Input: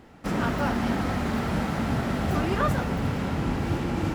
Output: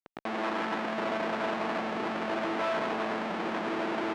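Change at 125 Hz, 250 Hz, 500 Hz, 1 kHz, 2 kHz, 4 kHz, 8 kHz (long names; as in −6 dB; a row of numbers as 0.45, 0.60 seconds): −21.0, −8.0, −0.5, −1.5, −1.0, −2.0, −10.0 decibels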